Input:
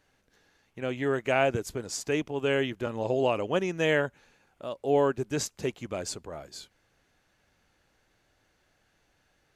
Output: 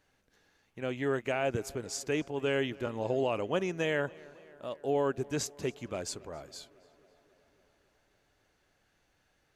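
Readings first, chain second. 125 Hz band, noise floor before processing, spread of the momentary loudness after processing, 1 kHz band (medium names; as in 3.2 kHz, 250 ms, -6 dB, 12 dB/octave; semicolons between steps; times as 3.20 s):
-3.5 dB, -71 dBFS, 14 LU, -5.0 dB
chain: peak limiter -16.5 dBFS, peak gain reduction 5.5 dB; tape echo 274 ms, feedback 73%, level -21 dB, low-pass 3.7 kHz; trim -3 dB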